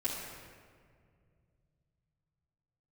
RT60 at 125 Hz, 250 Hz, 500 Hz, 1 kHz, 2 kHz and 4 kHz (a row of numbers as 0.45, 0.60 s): 4.5, 2.9, 2.4, 1.8, 1.6, 1.2 s